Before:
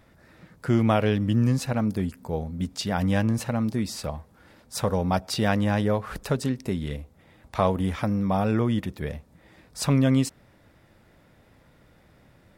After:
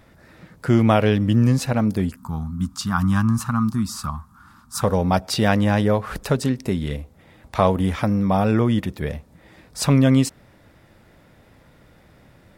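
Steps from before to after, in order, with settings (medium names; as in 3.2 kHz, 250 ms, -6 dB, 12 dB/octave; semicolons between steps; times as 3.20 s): 2.16–4.82 s: FFT filter 240 Hz 0 dB, 520 Hz -26 dB, 1.2 kHz +12 dB, 2 kHz -11 dB, 7.2 kHz 0 dB; trim +5 dB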